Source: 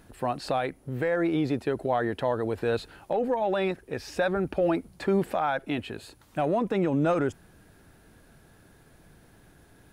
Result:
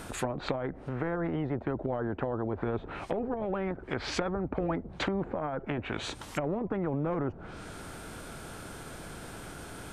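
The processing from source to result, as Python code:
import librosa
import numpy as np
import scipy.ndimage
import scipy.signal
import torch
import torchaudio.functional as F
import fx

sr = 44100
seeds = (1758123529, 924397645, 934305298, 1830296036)

y = fx.env_lowpass_down(x, sr, base_hz=570.0, full_db=-26.0)
y = fx.formant_shift(y, sr, semitones=-2)
y = fx.spectral_comp(y, sr, ratio=2.0)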